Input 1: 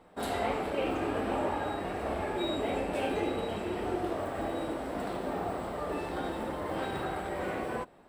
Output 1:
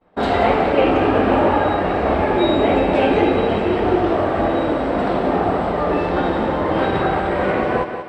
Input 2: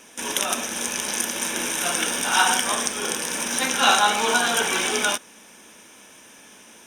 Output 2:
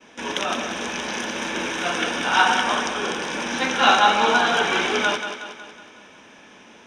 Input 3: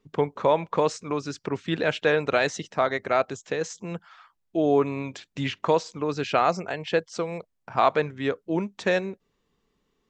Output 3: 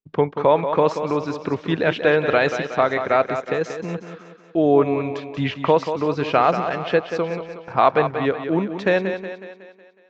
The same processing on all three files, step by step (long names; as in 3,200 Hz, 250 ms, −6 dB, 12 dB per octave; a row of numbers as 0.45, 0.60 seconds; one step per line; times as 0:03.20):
downward expander −48 dBFS
high-frequency loss of the air 180 metres
feedback echo with a high-pass in the loop 184 ms, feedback 52%, high-pass 150 Hz, level −8.5 dB
normalise the peak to −3 dBFS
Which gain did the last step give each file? +16.0, +3.5, +5.5 decibels